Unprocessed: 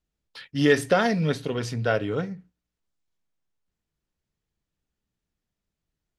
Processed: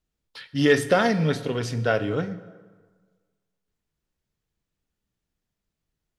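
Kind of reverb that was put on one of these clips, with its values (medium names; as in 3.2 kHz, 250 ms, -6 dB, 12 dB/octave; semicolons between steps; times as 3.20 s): plate-style reverb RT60 1.5 s, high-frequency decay 0.65×, DRR 12.5 dB; trim +1 dB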